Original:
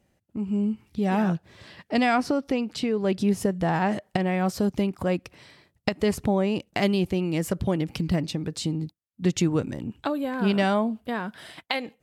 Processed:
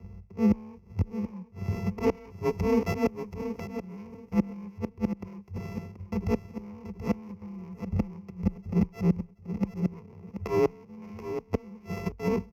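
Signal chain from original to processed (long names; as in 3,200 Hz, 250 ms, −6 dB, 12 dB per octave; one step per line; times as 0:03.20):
samples sorted by size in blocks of 64 samples
spectral tilt −4.5 dB per octave
in parallel at +2.5 dB: downward compressor 8 to 1, threshold −29 dBFS, peak gain reduction 19.5 dB
on the sum: volume swells 181 ms
hard clipping −16 dBFS, distortion −10 dB
EQ curve with evenly spaced ripples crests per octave 0.79, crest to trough 16 dB
gate with flip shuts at −13 dBFS, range −29 dB
frequency shifter +25 Hz
on a send: repeating echo 701 ms, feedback 19%, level −10 dB
on the sum: wrong playback speed 25 fps video run at 24 fps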